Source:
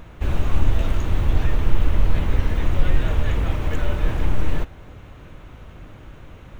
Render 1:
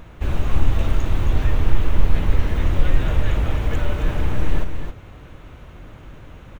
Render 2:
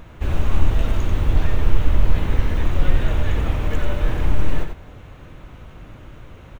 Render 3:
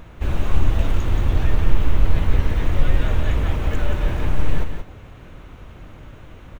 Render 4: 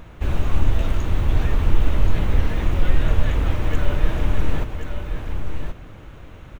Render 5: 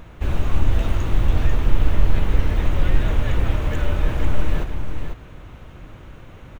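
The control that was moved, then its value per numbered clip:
delay, time: 267 ms, 90 ms, 177 ms, 1078 ms, 493 ms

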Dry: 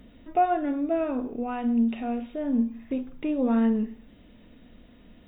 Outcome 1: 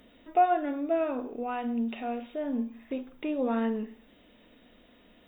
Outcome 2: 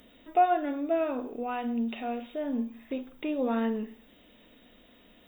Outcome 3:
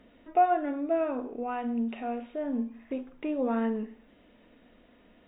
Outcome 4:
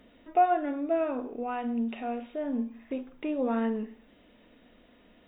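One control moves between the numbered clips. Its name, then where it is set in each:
tone controls, treble: +4 dB, +12 dB, -14 dB, -6 dB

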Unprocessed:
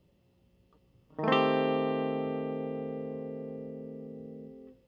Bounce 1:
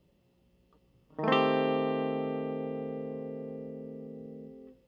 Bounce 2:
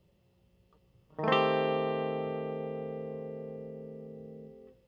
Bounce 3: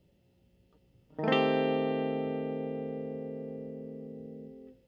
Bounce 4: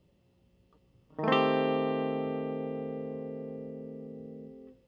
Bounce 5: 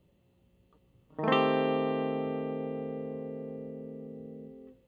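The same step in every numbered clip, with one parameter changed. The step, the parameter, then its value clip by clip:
peaking EQ, frequency: 98 Hz, 270 Hz, 1.1 kHz, 14 kHz, 5.2 kHz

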